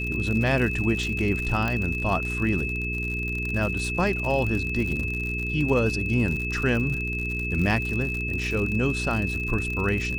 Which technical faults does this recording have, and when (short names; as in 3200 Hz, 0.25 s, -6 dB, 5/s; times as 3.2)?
crackle 79/s -29 dBFS
hum 60 Hz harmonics 7 -31 dBFS
tone 2600 Hz -29 dBFS
1.68 pop -14 dBFS